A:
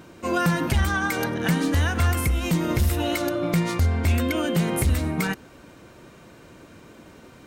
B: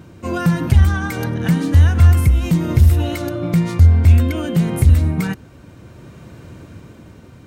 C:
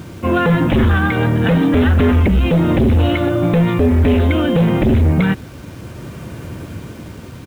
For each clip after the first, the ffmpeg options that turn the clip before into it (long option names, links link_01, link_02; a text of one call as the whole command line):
ffmpeg -i in.wav -af "equalizer=frequency=96:width_type=o:width=2.1:gain=14.5,dynaudnorm=framelen=220:gausssize=9:maxgain=6.5dB,volume=-1dB" out.wav
ffmpeg -i in.wav -af "aresample=8000,aeval=exprs='0.841*sin(PI/2*3.98*val(0)/0.841)':channel_layout=same,aresample=44100,acrusher=bits=5:mix=0:aa=0.000001,volume=-7.5dB" out.wav